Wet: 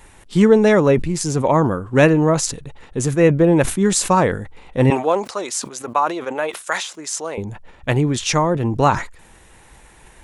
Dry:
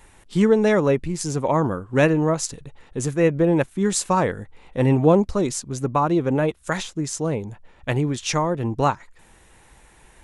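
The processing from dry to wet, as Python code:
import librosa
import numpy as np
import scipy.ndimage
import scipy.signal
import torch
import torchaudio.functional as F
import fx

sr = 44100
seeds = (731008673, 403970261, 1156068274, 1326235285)

y = fx.highpass(x, sr, hz=680.0, slope=12, at=(4.9, 7.38))
y = fx.sustainer(y, sr, db_per_s=110.0)
y = F.gain(torch.from_numpy(y), 4.5).numpy()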